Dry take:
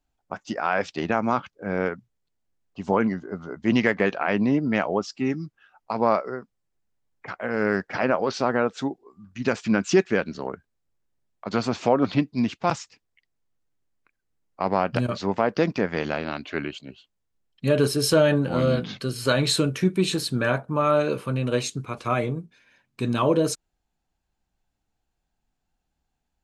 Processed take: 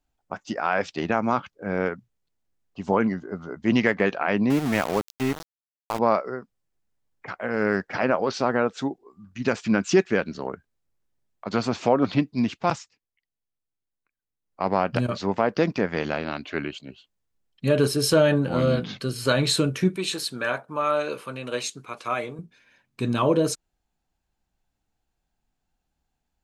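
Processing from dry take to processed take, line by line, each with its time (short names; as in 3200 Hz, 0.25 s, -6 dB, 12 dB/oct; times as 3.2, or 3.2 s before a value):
4.5–5.99 sample gate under -26.5 dBFS
12.7–14.64 dip -12 dB, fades 0.22 s
19.96–22.39 HPF 680 Hz 6 dB/oct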